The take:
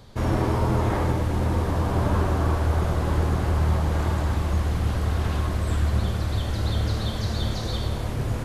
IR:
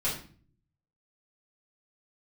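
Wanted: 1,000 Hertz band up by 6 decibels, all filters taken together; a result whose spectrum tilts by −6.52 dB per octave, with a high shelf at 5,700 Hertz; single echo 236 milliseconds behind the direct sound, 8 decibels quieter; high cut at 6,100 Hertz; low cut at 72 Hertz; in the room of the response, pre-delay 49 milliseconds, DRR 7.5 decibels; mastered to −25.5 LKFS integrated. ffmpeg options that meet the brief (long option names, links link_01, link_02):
-filter_complex "[0:a]highpass=72,lowpass=6100,equalizer=frequency=1000:width_type=o:gain=7.5,highshelf=frequency=5700:gain=-9,aecho=1:1:236:0.398,asplit=2[link_01][link_02];[1:a]atrim=start_sample=2205,adelay=49[link_03];[link_02][link_03]afir=irnorm=-1:irlink=0,volume=-15dB[link_04];[link_01][link_04]amix=inputs=2:normalize=0,volume=-2dB"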